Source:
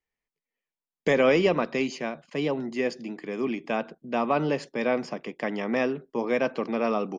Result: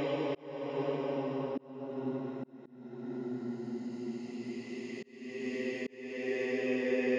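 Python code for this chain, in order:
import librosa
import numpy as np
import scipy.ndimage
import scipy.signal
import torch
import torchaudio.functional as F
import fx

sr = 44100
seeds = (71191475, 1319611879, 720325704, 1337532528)

y = fx.paulstretch(x, sr, seeds[0], factor=21.0, window_s=0.25, from_s=2.49)
y = fx.auto_swell(y, sr, attack_ms=500.0)
y = y * 10.0 ** (-6.5 / 20.0)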